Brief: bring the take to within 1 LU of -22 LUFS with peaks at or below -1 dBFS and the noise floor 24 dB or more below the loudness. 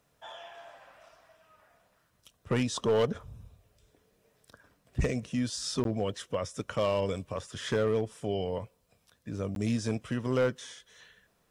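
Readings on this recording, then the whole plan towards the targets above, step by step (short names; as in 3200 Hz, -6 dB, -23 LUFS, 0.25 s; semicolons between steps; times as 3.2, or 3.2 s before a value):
clipped 0.5%; flat tops at -20.5 dBFS; dropouts 2; longest dropout 12 ms; loudness -31.5 LUFS; peak -20.5 dBFS; loudness target -22.0 LUFS
-> clip repair -20.5 dBFS; interpolate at 5.84/9.55, 12 ms; gain +9.5 dB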